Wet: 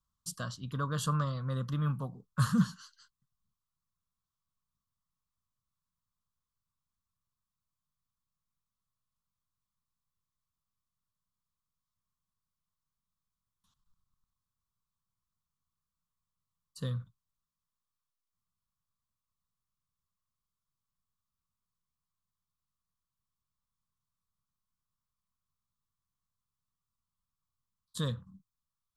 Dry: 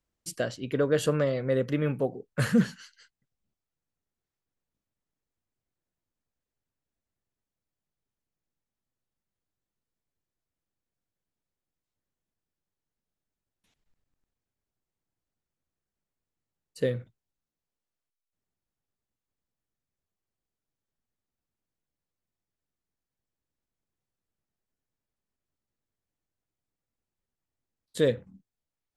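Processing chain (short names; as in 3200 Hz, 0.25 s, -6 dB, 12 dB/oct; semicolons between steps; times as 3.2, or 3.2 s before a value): EQ curve 180 Hz 0 dB, 380 Hz -21 dB, 780 Hz -13 dB, 1100 Hz +9 dB, 2200 Hz -22 dB, 3400 Hz -2 dB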